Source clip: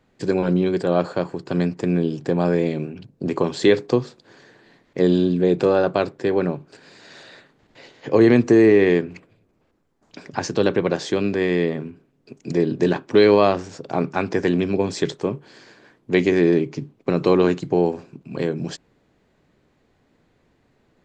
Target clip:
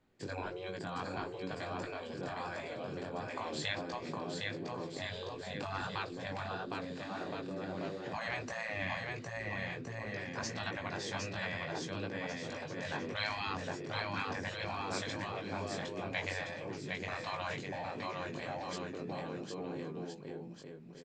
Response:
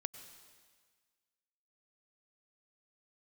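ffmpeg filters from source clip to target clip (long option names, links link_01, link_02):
-af "flanger=delay=17.5:depth=3:speed=1.5,aecho=1:1:760|1368|1854|2244|2555:0.631|0.398|0.251|0.158|0.1,afftfilt=real='re*lt(hypot(re,im),0.224)':imag='im*lt(hypot(re,im),0.224)':win_size=1024:overlap=0.75,volume=-7.5dB"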